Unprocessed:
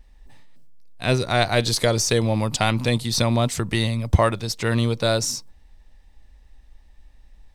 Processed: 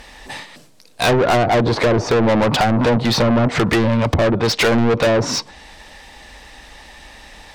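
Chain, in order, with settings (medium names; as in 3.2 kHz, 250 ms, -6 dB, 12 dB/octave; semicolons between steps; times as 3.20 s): low-pass that closes with the level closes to 350 Hz, closed at -15.5 dBFS; overdrive pedal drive 38 dB, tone 6.9 kHz, clips at -3.5 dBFS; trim -3.5 dB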